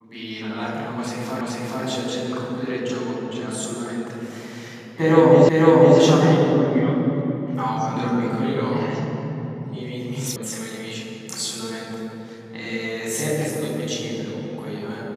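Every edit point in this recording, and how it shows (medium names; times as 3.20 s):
1.41 s: repeat of the last 0.43 s
5.49 s: repeat of the last 0.5 s
10.36 s: sound stops dead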